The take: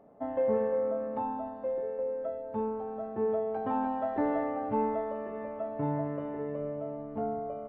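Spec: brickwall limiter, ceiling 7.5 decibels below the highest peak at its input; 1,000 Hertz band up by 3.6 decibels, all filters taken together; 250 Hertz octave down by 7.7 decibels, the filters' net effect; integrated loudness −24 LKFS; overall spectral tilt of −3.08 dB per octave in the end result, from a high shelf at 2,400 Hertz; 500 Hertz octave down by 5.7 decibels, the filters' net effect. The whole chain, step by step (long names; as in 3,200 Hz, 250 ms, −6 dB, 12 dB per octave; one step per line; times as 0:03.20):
parametric band 250 Hz −7.5 dB
parametric band 500 Hz −7.5 dB
parametric band 1,000 Hz +8.5 dB
high-shelf EQ 2,400 Hz −4 dB
level +13 dB
brickwall limiter −14 dBFS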